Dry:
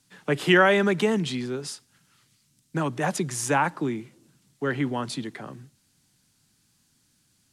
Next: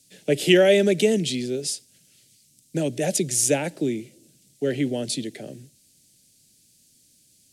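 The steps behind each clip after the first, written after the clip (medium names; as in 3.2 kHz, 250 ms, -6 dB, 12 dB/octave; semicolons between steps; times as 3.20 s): FFT filter 150 Hz 0 dB, 300 Hz +3 dB, 610 Hz +6 dB, 1.1 kHz -26 dB, 1.5 kHz -11 dB, 2.3 kHz +2 dB, 3.6 kHz +5 dB, 8.4 kHz +10 dB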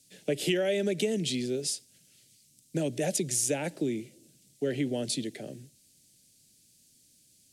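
compression 6:1, threshold -21 dBFS, peak gain reduction 10 dB; trim -3.5 dB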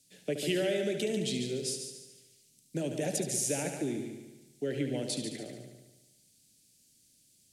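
multi-head delay 72 ms, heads first and second, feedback 50%, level -9.5 dB; trim -4 dB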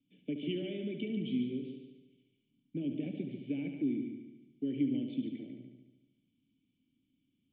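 cascade formant filter i; trim +5.5 dB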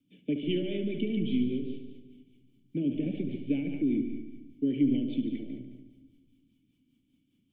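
rotary cabinet horn 5 Hz; on a send at -19 dB: LPC vocoder at 8 kHz pitch kept + reverberation RT60 1.6 s, pre-delay 145 ms; on the sum: trim +7.5 dB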